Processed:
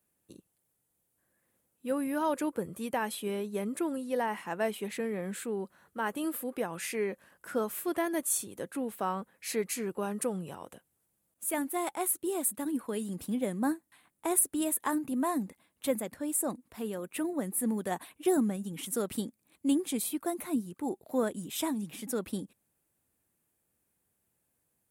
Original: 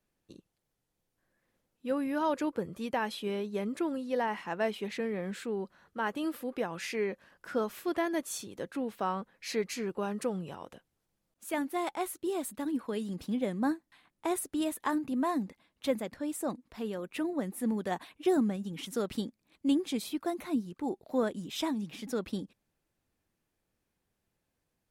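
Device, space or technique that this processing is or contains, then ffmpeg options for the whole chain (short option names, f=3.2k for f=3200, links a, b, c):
budget condenser microphone: -af "highpass=61,highshelf=f=7k:t=q:w=1.5:g=10"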